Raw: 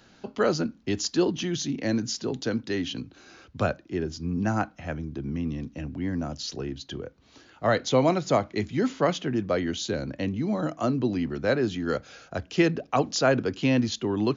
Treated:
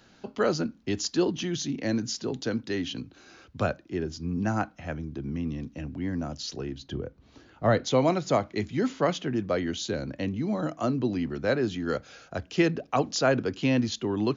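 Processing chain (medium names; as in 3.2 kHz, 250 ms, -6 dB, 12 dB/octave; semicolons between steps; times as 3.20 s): 6.80–7.84 s: tilt EQ -2 dB/octave; trim -1.5 dB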